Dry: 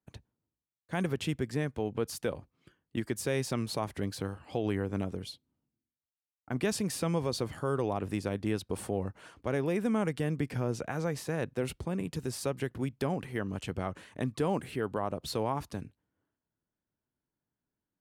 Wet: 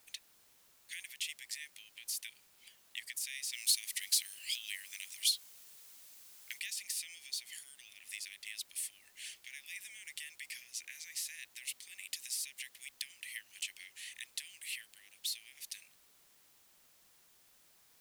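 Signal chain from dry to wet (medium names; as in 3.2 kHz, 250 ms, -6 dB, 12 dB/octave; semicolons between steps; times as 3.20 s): de-esser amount 80%; tilt EQ +3 dB/octave; compression 6:1, threshold -42 dBFS, peak gain reduction 14 dB; steep high-pass 1.9 kHz 72 dB/octave; added noise white -73 dBFS; 3.53–6.60 s: treble shelf 2.4 kHz +10.5 dB; trim +6.5 dB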